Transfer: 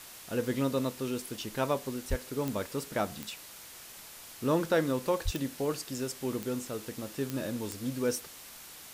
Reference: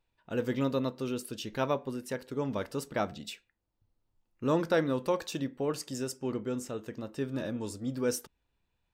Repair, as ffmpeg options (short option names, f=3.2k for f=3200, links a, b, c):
-filter_complex "[0:a]adeclick=t=4,asplit=3[a][b][c];[a]afade=t=out:st=2.09:d=0.02[d];[b]highpass=f=140:w=0.5412,highpass=f=140:w=1.3066,afade=t=in:st=2.09:d=0.02,afade=t=out:st=2.21:d=0.02[e];[c]afade=t=in:st=2.21:d=0.02[f];[d][e][f]amix=inputs=3:normalize=0,asplit=3[g][h][i];[g]afade=t=out:st=5.24:d=0.02[j];[h]highpass=f=140:w=0.5412,highpass=f=140:w=1.3066,afade=t=in:st=5.24:d=0.02,afade=t=out:st=5.36:d=0.02[k];[i]afade=t=in:st=5.36:d=0.02[l];[j][k][l]amix=inputs=3:normalize=0,afwtdn=0.0045"